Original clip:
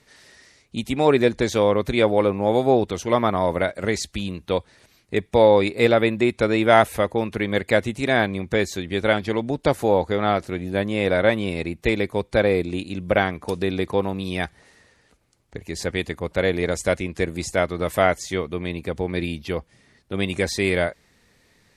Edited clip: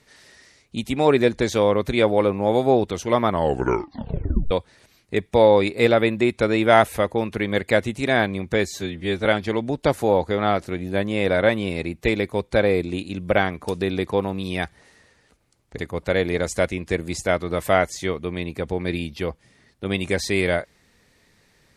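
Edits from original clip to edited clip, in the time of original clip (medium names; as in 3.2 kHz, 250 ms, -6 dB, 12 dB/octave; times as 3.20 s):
3.28 s: tape stop 1.23 s
8.67–9.06 s: stretch 1.5×
15.59–16.07 s: delete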